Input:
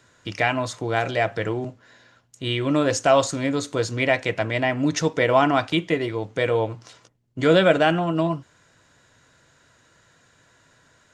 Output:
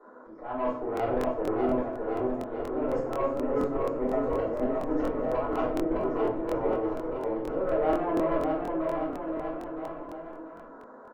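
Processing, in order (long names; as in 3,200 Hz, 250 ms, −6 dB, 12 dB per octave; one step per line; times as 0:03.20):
elliptic band-pass filter 250–1,200 Hz, stop band 40 dB
mains-hum notches 60/120/180/240/300/360 Hz
volume swells 439 ms
reversed playback
downward compressor 5 to 1, threshold −40 dBFS, peak gain reduction 20 dB
reversed playback
tube saturation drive 36 dB, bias 0.4
on a send: bouncing-ball delay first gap 610 ms, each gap 0.85×, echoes 5
on the sum: rectangular room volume 69 cubic metres, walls mixed, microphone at 3.5 metres
regular buffer underruns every 0.24 s, samples 1,024, repeat, from 0:00.95
level +1.5 dB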